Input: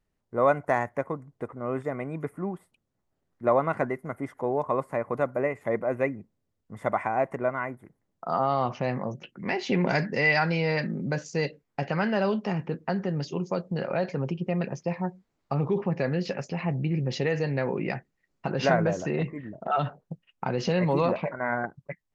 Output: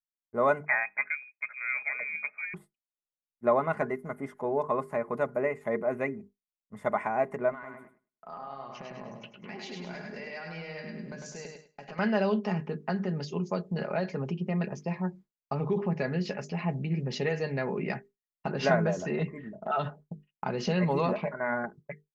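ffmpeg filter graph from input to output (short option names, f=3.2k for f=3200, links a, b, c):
-filter_complex "[0:a]asettb=1/sr,asplit=3[a][b][c];[a]atrim=end=0.664[d];[b]atrim=start=0.66:end=2.54,asetpts=PTS-STARTPTS,afade=t=in:d=0.004:c=qsin,afade=t=out:st=1.876:d=0.004:c=qsin,asoftclip=type=hard:threshold=-13.5dB,lowpass=f=2.2k:t=q:w=0.5098,lowpass=f=2.2k:t=q:w=0.6013,lowpass=f=2.2k:t=q:w=0.9,lowpass=f=2.2k:t=q:w=2.563,afreqshift=-2600[e];[c]atrim=start=2.536[f];[d][e]acrossfade=d=0.004:c1=hsin:c2=qsin[g];[g][f]acrossfade=d=0.004:c1=qsin:c2=hsin,asettb=1/sr,asplit=3[h][i][j];[h]atrim=end=7.524[k];[i]atrim=start=7.52:end=11.99,asetpts=PTS-STARTPTS,afade=t=in:d=0.004:c=qsin,afade=t=out:st=4.466:d=0.004:c=qsin,lowshelf=f=220:g=-8,acompressor=threshold=-37dB:ratio=6:attack=3.2:release=140:knee=1:detection=peak,aecho=1:1:102|204|306|408|510|612:0.668|0.321|0.154|0.0739|0.0355|0.017,atrim=end_sample=197127[l];[j]atrim=start=11.986[m];[k][l]acrossfade=d=0.004:c1=hsin:c2=qsin[n];[n][m]acrossfade=d=0.004:c1=qsin:c2=hsin,bandreject=f=50:t=h:w=6,bandreject=f=100:t=h:w=6,bandreject=f=150:t=h:w=6,bandreject=f=200:t=h:w=6,bandreject=f=250:t=h:w=6,bandreject=f=300:t=h:w=6,bandreject=f=350:t=h:w=6,bandreject=f=400:t=h:w=6,bandreject=f=450:t=h:w=6,agate=range=-33dB:threshold=-41dB:ratio=3:detection=peak,aecho=1:1:4.8:0.49,volume=-3dB"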